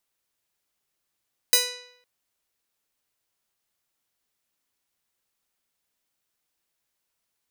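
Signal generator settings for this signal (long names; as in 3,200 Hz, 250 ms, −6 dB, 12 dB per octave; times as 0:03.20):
Karplus-Strong string B4, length 0.51 s, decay 0.76 s, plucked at 0.44, bright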